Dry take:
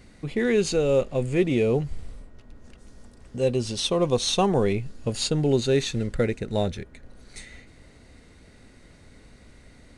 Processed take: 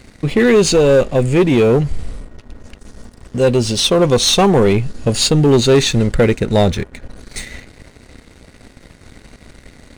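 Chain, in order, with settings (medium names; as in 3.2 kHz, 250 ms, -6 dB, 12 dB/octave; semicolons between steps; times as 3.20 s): waveshaping leveller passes 2; in parallel at +2 dB: gain riding within 4 dB 2 s; on the sum: trim -1.5 dB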